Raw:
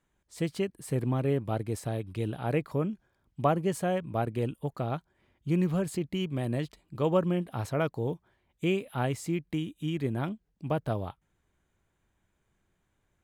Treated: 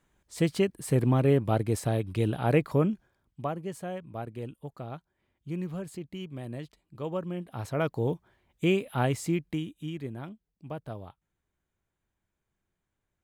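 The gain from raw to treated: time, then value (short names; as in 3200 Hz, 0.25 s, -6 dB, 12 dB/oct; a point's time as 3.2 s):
2.92 s +5 dB
3.49 s -7.5 dB
7.27 s -7.5 dB
8.01 s +3 dB
9.3 s +3 dB
10.22 s -8.5 dB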